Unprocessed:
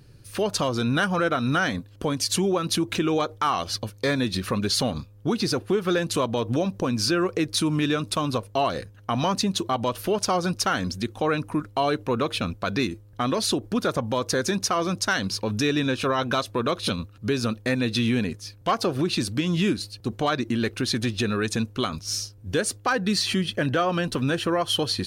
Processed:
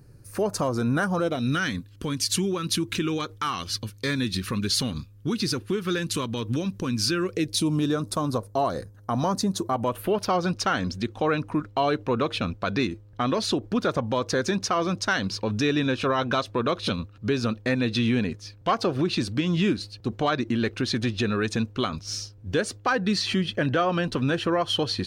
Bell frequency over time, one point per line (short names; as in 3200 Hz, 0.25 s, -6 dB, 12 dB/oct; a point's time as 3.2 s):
bell -15 dB 0.96 oct
1.01 s 3300 Hz
1.63 s 670 Hz
7.16 s 670 Hz
7.98 s 2700 Hz
9.58 s 2700 Hz
10.51 s 12000 Hz